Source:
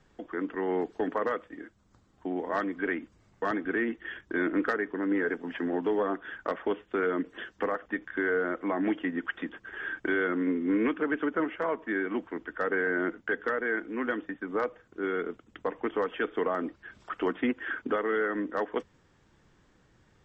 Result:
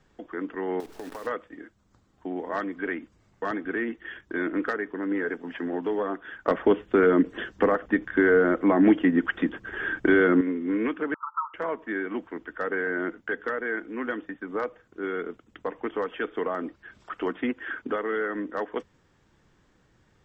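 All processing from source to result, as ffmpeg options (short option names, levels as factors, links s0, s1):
-filter_complex "[0:a]asettb=1/sr,asplit=3[s0][s1][s2];[s0]atrim=end=0.804[s3];[s1]atrim=start=0.8:end=1.27,asetpts=PTS-STARTPTS,afade=t=in:d=0.004:c=qsin,afade=t=out:st=0.466:d=0.004:c=qsin,aeval=exprs='val(0)+0.5*0.00891*sgn(val(0))':c=same,acrusher=bits=7:dc=4:mix=0:aa=0.000001,acompressor=threshold=0.02:ratio=10:attack=3.2:release=140:knee=1:detection=peak[s4];[s2]atrim=start=1.266[s5];[s3][s4]acrossfade=d=0.004:c1=hsin:c2=qsin[s6];[s6][s5]acrossfade=d=0.004:c1=qsin:c2=hsin,asettb=1/sr,asplit=3[s7][s8][s9];[s7]atrim=end=6.474[s10];[s8]atrim=start=6.47:end=10.41,asetpts=PTS-STARTPTS,afade=t=in:d=0.004:c=qsin,afade=t=out:st=3.936:d=0.004:c=qsin,lowshelf=f=440:g=8.5,acontrast=22[s11];[s9]atrim=start=10.406[s12];[s10][s11]acrossfade=d=0.004:c1=hsin:c2=qsin[s13];[s13][s12]acrossfade=d=0.004:c1=qsin:c2=hsin,asettb=1/sr,asplit=3[s14][s15][s16];[s14]atrim=end=11.144[s17];[s15]atrim=start=11.14:end=11.54,asetpts=PTS-STARTPTS,afade=t=in:d=0.004:c=qsin,afade=t=out:st=0.396:d=0.004:c=qsin,asuperpass=centerf=1100:order=20:qfactor=2.2,acontrast=77[s18];[s16]atrim=start=11.536[s19];[s17][s18]acrossfade=d=0.004:c1=hsin:c2=qsin[s20];[s20][s19]acrossfade=d=0.004:c1=qsin:c2=hsin"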